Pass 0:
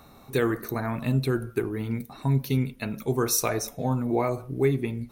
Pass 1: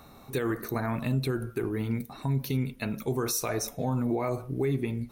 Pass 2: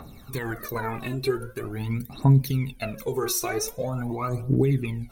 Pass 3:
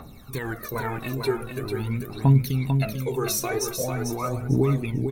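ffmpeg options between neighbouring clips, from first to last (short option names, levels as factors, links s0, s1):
-af "alimiter=limit=0.1:level=0:latency=1:release=63"
-af "aphaser=in_gain=1:out_gain=1:delay=2.9:decay=0.76:speed=0.44:type=triangular"
-af "aecho=1:1:446|892|1338:0.501|0.105|0.0221"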